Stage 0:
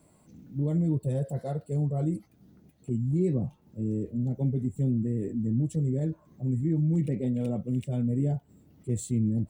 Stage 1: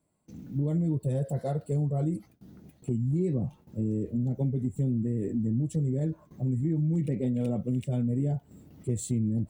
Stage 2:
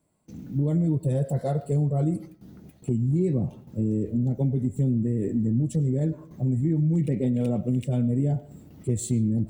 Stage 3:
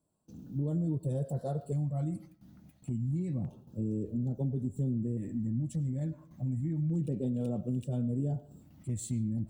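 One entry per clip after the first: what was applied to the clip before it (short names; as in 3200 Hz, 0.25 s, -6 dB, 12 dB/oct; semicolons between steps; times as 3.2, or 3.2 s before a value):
gate with hold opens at -49 dBFS; compressor 2.5:1, threshold -34 dBFS, peak gain reduction 8.5 dB; gain +6 dB
reverb RT60 0.50 s, pre-delay 60 ms, DRR 16.5 dB; gain +4 dB
LFO notch square 0.29 Hz 420–2100 Hz; gain -8 dB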